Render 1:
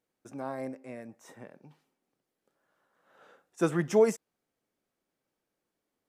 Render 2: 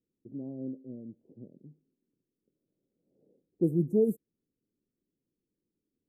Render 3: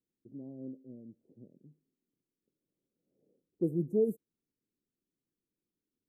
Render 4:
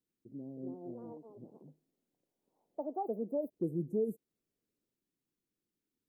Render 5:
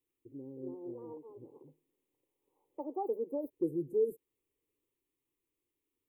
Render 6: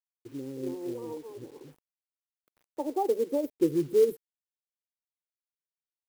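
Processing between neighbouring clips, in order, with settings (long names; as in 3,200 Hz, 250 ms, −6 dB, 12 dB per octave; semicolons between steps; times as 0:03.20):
inverse Chebyshev band-stop filter 1,500–4,100 Hz, stop band 80 dB; low-pass that shuts in the quiet parts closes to 790 Hz, open at −26.5 dBFS; level +3 dB
dynamic equaliser 510 Hz, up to +4 dB, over −39 dBFS, Q 1.2; level −6 dB
delay with pitch and tempo change per echo 378 ms, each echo +5 semitones, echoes 2; downward compressor 1.5 to 1, threshold −37 dBFS, peak gain reduction 5 dB
phaser with its sweep stopped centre 1,000 Hz, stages 8; level +4 dB
log-companded quantiser 6 bits; level +8 dB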